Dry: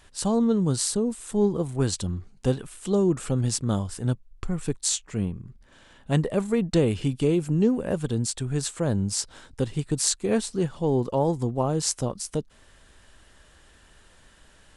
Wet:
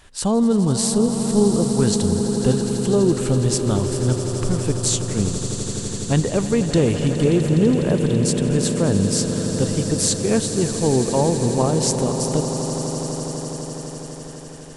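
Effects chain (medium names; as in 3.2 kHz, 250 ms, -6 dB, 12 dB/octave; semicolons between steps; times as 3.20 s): in parallel at -2 dB: peak limiter -16 dBFS, peak gain reduction 10 dB; on the sum: echo with a slow build-up 83 ms, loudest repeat 8, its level -13.5 dB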